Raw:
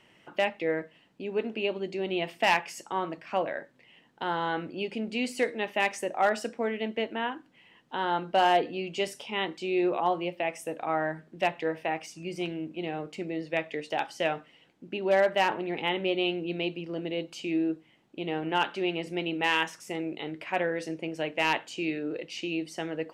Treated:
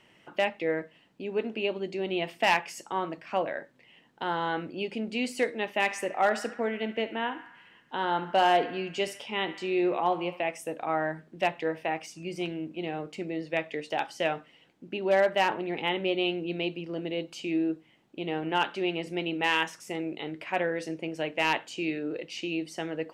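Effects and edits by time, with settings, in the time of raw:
0:05.77–0:10.51: feedback echo with a band-pass in the loop 70 ms, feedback 71%, band-pass 1,600 Hz, level −12 dB

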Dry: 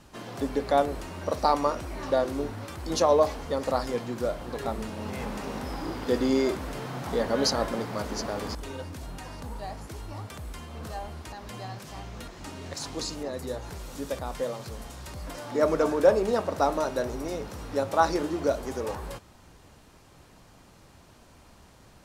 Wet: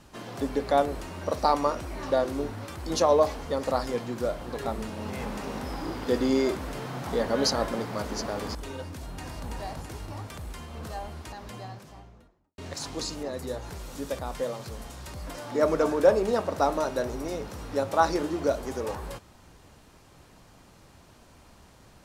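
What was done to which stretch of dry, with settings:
0:08.84–0:09.48: delay throw 330 ms, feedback 60%, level −2.5 dB
0:11.29–0:12.58: fade out and dull

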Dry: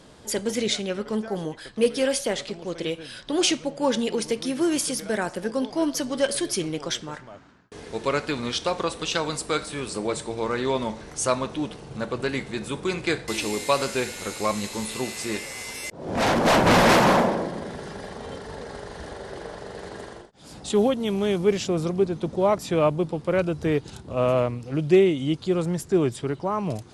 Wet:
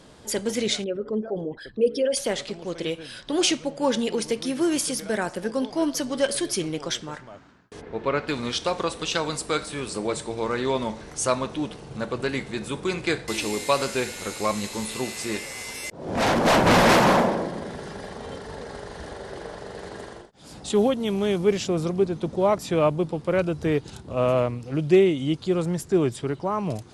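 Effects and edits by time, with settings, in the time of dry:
0:00.84–0:02.17: spectral envelope exaggerated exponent 2
0:07.80–0:08.27: low-pass filter 1,600 Hz → 3,300 Hz

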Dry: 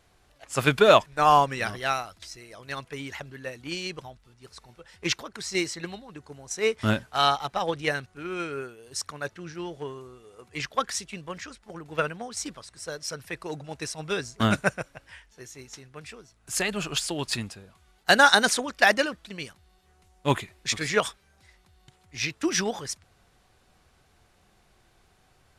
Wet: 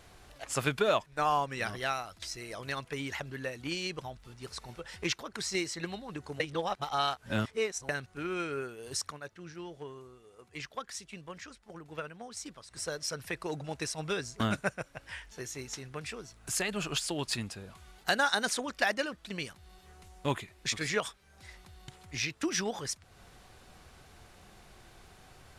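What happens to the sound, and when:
0:06.40–0:07.89: reverse
0:09.08–0:12.82: duck −13.5 dB, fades 0.13 s
whole clip: downward compressor 2 to 1, threshold −47 dBFS; level +7 dB

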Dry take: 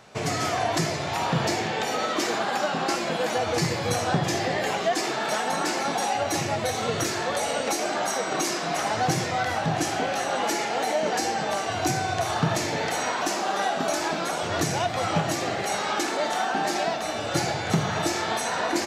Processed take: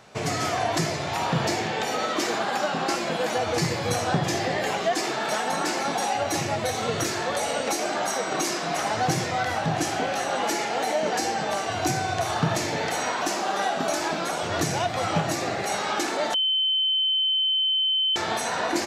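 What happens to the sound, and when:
0:15.26–0:15.68: notch filter 3,100 Hz
0:16.34–0:18.16: beep over 3,070 Hz −20 dBFS

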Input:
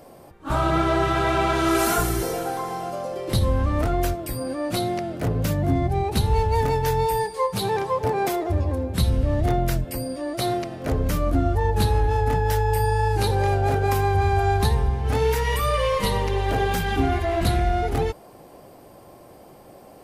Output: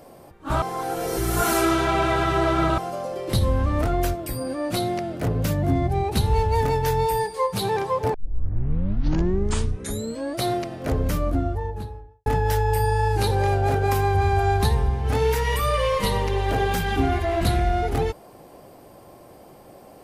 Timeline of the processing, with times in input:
0:00.62–0:02.78: reverse
0:08.14: tape start 2.24 s
0:10.96–0:12.26: fade out and dull

